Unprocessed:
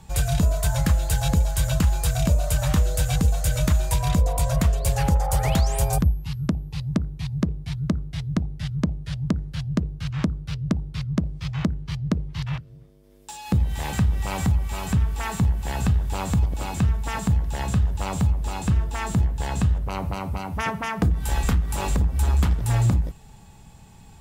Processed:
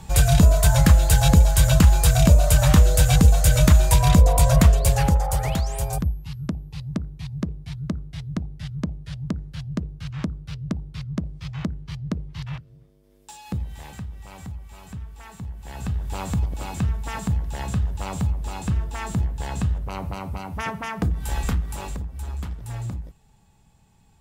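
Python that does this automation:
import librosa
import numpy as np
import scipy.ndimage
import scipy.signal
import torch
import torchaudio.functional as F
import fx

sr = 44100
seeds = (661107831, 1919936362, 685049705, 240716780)

y = fx.gain(x, sr, db=fx.line((4.67, 6.0), (5.63, -4.0), (13.31, -4.0), (14.08, -14.5), (15.41, -14.5), (16.13, -2.5), (21.6, -2.5), (22.06, -11.0)))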